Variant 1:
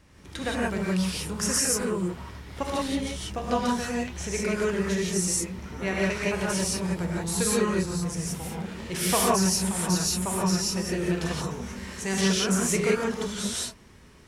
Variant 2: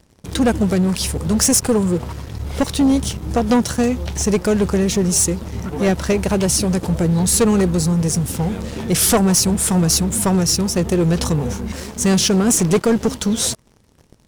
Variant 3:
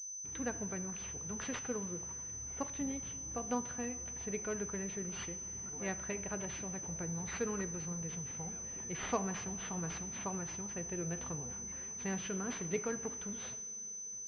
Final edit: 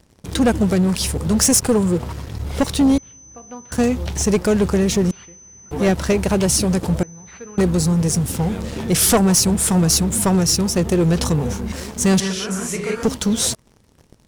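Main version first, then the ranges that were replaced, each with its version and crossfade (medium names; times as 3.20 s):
2
2.98–3.72 s: from 3
5.11–5.71 s: from 3
7.03–7.58 s: from 3
12.20–13.03 s: from 1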